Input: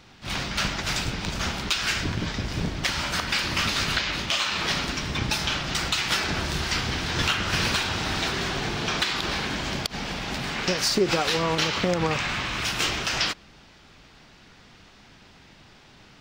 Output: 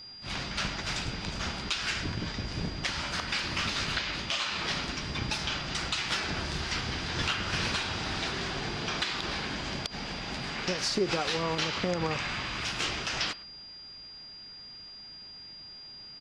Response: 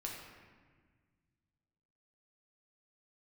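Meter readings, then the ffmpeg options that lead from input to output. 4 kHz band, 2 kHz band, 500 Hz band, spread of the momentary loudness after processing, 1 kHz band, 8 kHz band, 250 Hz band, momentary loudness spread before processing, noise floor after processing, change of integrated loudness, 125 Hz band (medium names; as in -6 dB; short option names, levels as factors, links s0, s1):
-5.5 dB, -6.0 dB, -6.0 dB, 14 LU, -6.0 dB, -7.5 dB, -6.0 dB, 6 LU, -47 dBFS, -6.0 dB, -6.0 dB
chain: -filter_complex "[0:a]lowpass=7800,aeval=exprs='val(0)+0.0126*sin(2*PI*4800*n/s)':c=same,asplit=2[s0][s1];[s1]adelay=110,highpass=300,lowpass=3400,asoftclip=type=hard:threshold=0.119,volume=0.1[s2];[s0][s2]amix=inputs=2:normalize=0,volume=0.501"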